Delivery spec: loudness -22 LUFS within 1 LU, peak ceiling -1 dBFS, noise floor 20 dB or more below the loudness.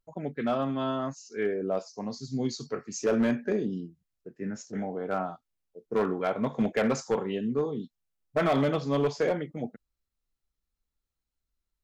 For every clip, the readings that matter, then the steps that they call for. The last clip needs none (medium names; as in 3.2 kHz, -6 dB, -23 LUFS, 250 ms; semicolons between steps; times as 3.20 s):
clipped samples 1.0%; clipping level -19.5 dBFS; loudness -30.0 LUFS; peak level -19.5 dBFS; loudness target -22.0 LUFS
-> clip repair -19.5 dBFS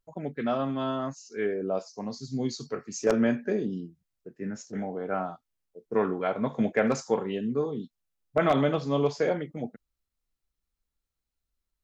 clipped samples 0.0%; loudness -29.5 LUFS; peak level -10.5 dBFS; loudness target -22.0 LUFS
-> trim +7.5 dB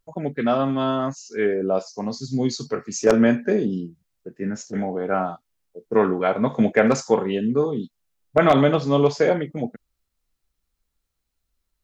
loudness -22.0 LUFS; peak level -3.0 dBFS; noise floor -78 dBFS